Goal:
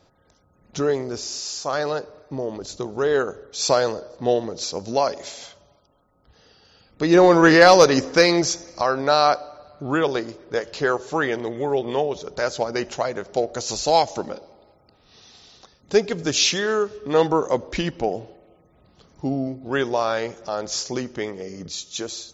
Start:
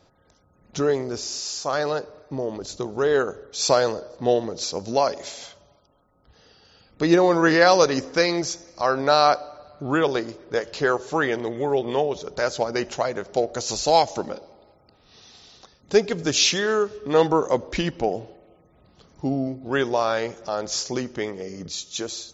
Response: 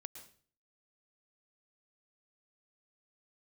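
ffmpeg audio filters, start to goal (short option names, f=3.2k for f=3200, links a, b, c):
-filter_complex "[0:a]asplit=3[a][b][c];[a]afade=t=out:st=7.14:d=0.02[d];[b]acontrast=35,afade=t=in:st=7.14:d=0.02,afade=t=out:st=8.82:d=0.02[e];[c]afade=t=in:st=8.82:d=0.02[f];[d][e][f]amix=inputs=3:normalize=0"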